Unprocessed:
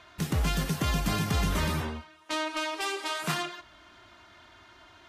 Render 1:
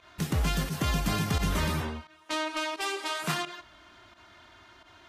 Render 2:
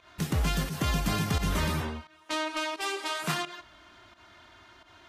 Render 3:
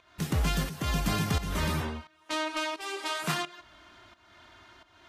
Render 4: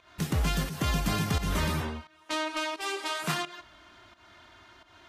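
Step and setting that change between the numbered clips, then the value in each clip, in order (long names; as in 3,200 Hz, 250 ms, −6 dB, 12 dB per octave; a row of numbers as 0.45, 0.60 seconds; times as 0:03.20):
fake sidechain pumping, release: 73, 111, 405, 185 milliseconds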